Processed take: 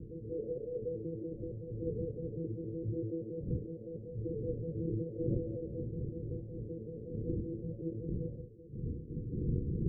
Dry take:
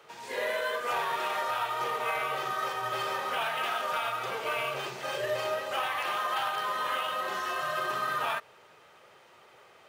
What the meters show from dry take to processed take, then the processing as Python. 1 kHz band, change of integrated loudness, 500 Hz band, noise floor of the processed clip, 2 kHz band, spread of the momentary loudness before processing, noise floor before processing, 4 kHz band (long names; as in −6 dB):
below −40 dB, −8.5 dB, −5.0 dB, −47 dBFS, below −40 dB, 3 LU, −57 dBFS, below −40 dB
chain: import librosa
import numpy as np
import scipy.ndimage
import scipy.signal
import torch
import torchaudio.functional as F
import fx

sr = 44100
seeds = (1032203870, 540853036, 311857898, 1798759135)

p1 = fx.vocoder_arp(x, sr, chord='bare fifth', root=45, every_ms=94)
p2 = fx.dmg_wind(p1, sr, seeds[0], corner_hz=200.0, level_db=-41.0)
p3 = fx.over_compress(p2, sr, threshold_db=-39.0, ratio=-0.5)
p4 = p2 + (p3 * librosa.db_to_amplitude(-3.0))
p5 = fx.cheby_harmonics(p4, sr, harmonics=(3, 4), levels_db=(-14, -28), full_scale_db=-16.5)
p6 = scipy.signal.sosfilt(scipy.signal.cheby1(6, 6, 500.0, 'lowpass', fs=sr, output='sos'), p5)
y = p6 * librosa.db_to_amplitude(6.5)